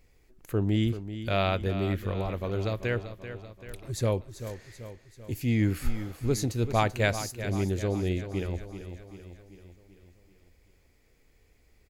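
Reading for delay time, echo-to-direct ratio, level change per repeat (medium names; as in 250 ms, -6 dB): 387 ms, -10.0 dB, -5.0 dB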